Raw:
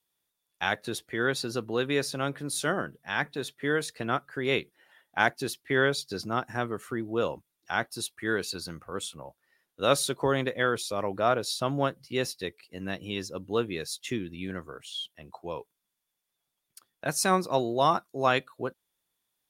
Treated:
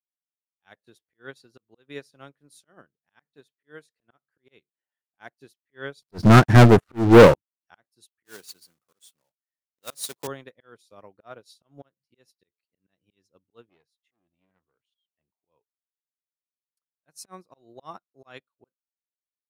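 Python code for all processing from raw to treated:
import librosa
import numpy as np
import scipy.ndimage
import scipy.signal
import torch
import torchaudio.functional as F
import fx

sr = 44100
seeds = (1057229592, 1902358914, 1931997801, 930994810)

y = fx.chain(x, sr, fx.tilt_eq(slope=-3.5),
    fx.leveller(passes=5), at=(6.02, 7.34))
y = fx.chain(y, sr, fx.block_float(bits=3),
    fx.highpass(hz=120.0, slope=12),
    fx.high_shelf(hz=4000.0, db=9.5), at=(8.25, 10.28))
y = fx.chain(y, sr, fx.bass_treble(bass_db=-1, treble_db=-12),
    fx.transformer_sat(knee_hz=1100.0), at=(13.69, 15.32))
y = fx.auto_swell(y, sr, attack_ms=159.0)
y = fx.upward_expand(y, sr, threshold_db=-41.0, expansion=2.5)
y = y * librosa.db_to_amplitude(7.0)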